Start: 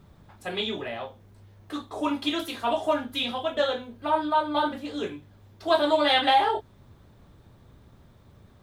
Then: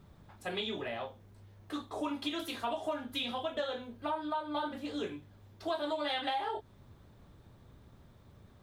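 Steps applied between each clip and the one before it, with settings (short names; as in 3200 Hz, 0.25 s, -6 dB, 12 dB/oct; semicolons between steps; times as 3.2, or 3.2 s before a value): compressor 5:1, threshold -28 dBFS, peak gain reduction 11.5 dB; gain -4 dB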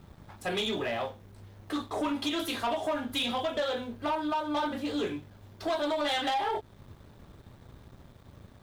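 sample leveller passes 2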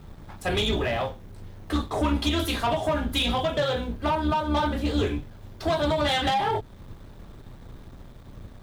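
octaver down 2 oct, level +2 dB; gain +5 dB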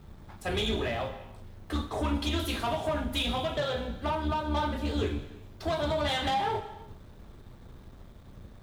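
non-linear reverb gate 0.42 s falling, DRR 8.5 dB; gain -5.5 dB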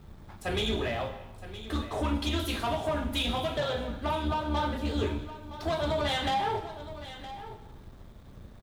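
echo 0.967 s -14 dB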